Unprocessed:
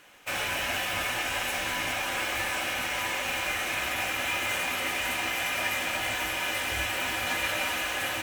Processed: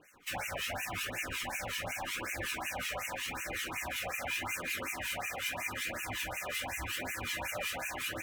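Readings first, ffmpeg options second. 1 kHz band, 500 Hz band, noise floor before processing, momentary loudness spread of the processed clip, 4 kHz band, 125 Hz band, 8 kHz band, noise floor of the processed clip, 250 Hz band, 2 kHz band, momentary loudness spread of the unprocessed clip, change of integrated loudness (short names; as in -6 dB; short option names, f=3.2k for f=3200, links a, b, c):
-8.5 dB, -6.5 dB, -32 dBFS, 2 LU, -9.0 dB, -3.5 dB, -6.0 dB, -41 dBFS, -6.0 dB, -8.5 dB, 1 LU, -8.0 dB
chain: -filter_complex "[0:a]asplit=2[a][b];[b]alimiter=limit=-24dB:level=0:latency=1,volume=0.5dB[c];[a][c]amix=inputs=2:normalize=0,acrossover=split=1900[d][e];[d]aeval=exprs='val(0)*(1-1/2+1/2*cos(2*PI*5.4*n/s))':c=same[f];[e]aeval=exprs='val(0)*(1-1/2-1/2*cos(2*PI*5.4*n/s))':c=same[g];[f][g]amix=inputs=2:normalize=0,flanger=delay=0.4:depth=1.3:regen=-23:speed=0.85:shape=triangular,afftfilt=real='re*(1-between(b*sr/1024,570*pow(4100/570,0.5+0.5*sin(2*PI*2.7*pts/sr))/1.41,570*pow(4100/570,0.5+0.5*sin(2*PI*2.7*pts/sr))*1.41))':imag='im*(1-between(b*sr/1024,570*pow(4100/570,0.5+0.5*sin(2*PI*2.7*pts/sr))/1.41,570*pow(4100/570,0.5+0.5*sin(2*PI*2.7*pts/sr))*1.41))':win_size=1024:overlap=0.75,volume=-2.5dB"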